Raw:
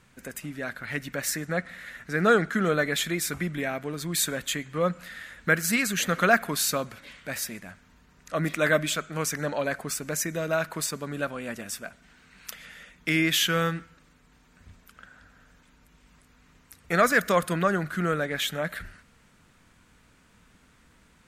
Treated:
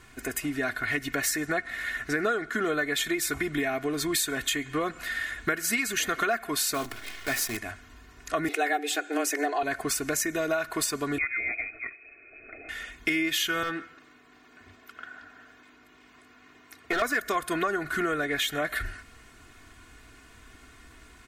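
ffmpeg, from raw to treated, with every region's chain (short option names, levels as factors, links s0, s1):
-filter_complex "[0:a]asettb=1/sr,asplit=3[s0][s1][s2];[s0]atrim=end=6.744[s3];[s1]atrim=start=6.74:end=7.57,asetpts=PTS-STARTPTS,afade=t=in:d=0.004:c=qsin,afade=t=out:st=0.826:d=0.004:c=qsin,acompressor=mode=upward:threshold=0.0112:ratio=2.5:attack=3.2:release=140:knee=2.83:detection=peak,acrusher=bits=7:dc=4:mix=0:aa=0.000001,bandreject=f=50:t=h:w=6,bandreject=f=100:t=h:w=6,bandreject=f=150:t=h:w=6,bandreject=f=200:t=h:w=6,bandreject=f=250:t=h:w=6,bandreject=f=300:t=h:w=6,bandreject=f=350:t=h:w=6[s4];[s2]atrim=start=7.566[s5];[s3][s4]acrossfade=d=0.004:c1=hsin:c2=qsin[s6];[s6][s5]acrossfade=d=0.004:c1=qsin:c2=hsin,asettb=1/sr,asplit=3[s7][s8][s9];[s7]atrim=end=8.484[s10];[s8]atrim=start=8.48:end=9.63,asetpts=PTS-STARTPTS,afade=t=in:d=0.004:c=qsin,afade=t=out:st=1.146:d=0.004:c=qsin,equalizer=f=370:w=5.6:g=11.5,afreqshift=140[s11];[s9]atrim=start=9.626[s12];[s10][s11]acrossfade=d=0.004:c1=hsin:c2=qsin[s13];[s13][s12]acrossfade=d=0.004:c1=qsin:c2=hsin,asettb=1/sr,asplit=3[s14][s15][s16];[s14]atrim=end=11.184[s17];[s15]atrim=start=11.18:end=12.69,asetpts=PTS-STARTPTS,afade=t=in:d=0.004:c=qsin,afade=t=out:st=1.506:d=0.004:c=qsin,lowpass=f=2200:t=q:w=0.5098,lowpass=f=2200:t=q:w=0.6013,lowpass=f=2200:t=q:w=0.9,lowpass=f=2200:t=q:w=2.563,afreqshift=-2600,asuperstop=centerf=960:order=4:qfactor=1[s18];[s16]atrim=start=12.686[s19];[s17][s18]acrossfade=d=0.004:c1=hsin:c2=qsin[s20];[s20][s19]acrossfade=d=0.004:c1=qsin:c2=hsin,asettb=1/sr,asplit=3[s21][s22][s23];[s21]atrim=end=13.634[s24];[s22]atrim=start=13.63:end=17.02,asetpts=PTS-STARTPTS,afade=t=in:d=0.004:c=qsin,afade=t=out:st=3.386:d=0.004:c=qsin,highpass=190,equalizer=f=10000:t=o:w=1.5:g=-12.5,asoftclip=type=hard:threshold=0.0708[s25];[s23]atrim=start=17.016[s26];[s24][s25]acrossfade=d=0.004:c1=hsin:c2=qsin[s27];[s27][s26]acrossfade=d=0.004:c1=qsin:c2=hsin,equalizer=f=1900:t=o:w=0.77:g=2,aecho=1:1:2.8:0.82,acompressor=threshold=0.0316:ratio=6,volume=1.78"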